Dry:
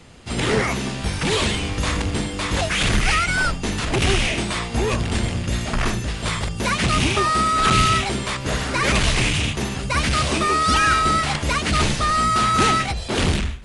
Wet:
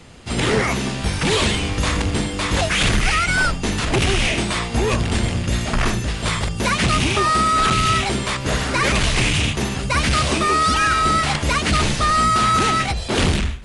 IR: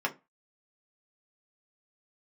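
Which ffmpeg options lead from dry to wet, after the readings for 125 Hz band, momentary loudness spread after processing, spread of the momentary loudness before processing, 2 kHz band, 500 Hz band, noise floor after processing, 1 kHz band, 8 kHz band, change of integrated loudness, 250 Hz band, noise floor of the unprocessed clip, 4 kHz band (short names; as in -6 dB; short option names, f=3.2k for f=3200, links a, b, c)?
+1.5 dB, 6 LU, 8 LU, +1.5 dB, +1.5 dB, -27 dBFS, +1.5 dB, +1.5 dB, +1.5 dB, +1.5 dB, -29 dBFS, +1.5 dB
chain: -af "alimiter=limit=-11dB:level=0:latency=1:release=130,volume=2.5dB"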